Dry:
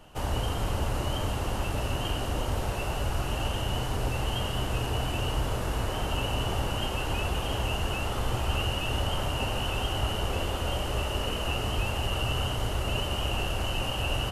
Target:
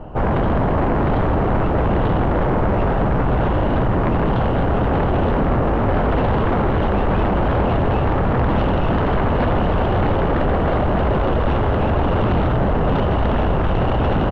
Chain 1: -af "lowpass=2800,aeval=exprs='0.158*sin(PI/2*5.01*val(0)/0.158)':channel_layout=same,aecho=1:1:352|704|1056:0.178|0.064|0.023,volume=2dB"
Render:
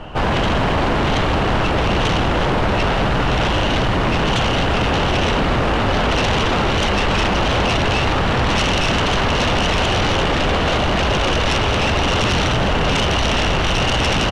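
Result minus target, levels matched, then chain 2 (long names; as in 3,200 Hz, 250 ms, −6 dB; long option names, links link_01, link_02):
2,000 Hz band +7.0 dB
-af "lowpass=830,aeval=exprs='0.158*sin(PI/2*5.01*val(0)/0.158)':channel_layout=same,aecho=1:1:352|704|1056:0.178|0.064|0.023,volume=2dB"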